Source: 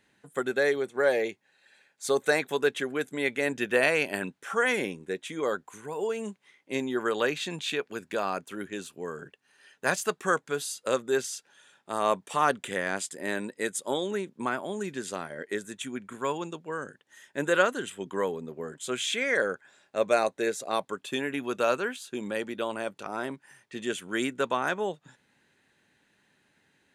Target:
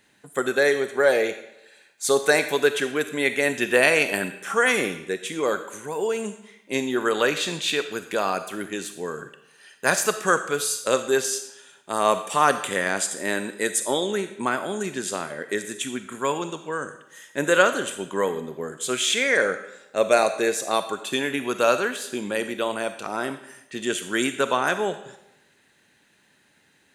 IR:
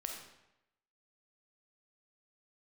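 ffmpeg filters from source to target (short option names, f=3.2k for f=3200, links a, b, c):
-filter_complex "[0:a]asplit=2[a][b];[1:a]atrim=start_sample=2205,lowshelf=f=180:g=-7,highshelf=f=3.7k:g=11.5[c];[b][c]afir=irnorm=-1:irlink=0,volume=-3.5dB[d];[a][d]amix=inputs=2:normalize=0,volume=2dB"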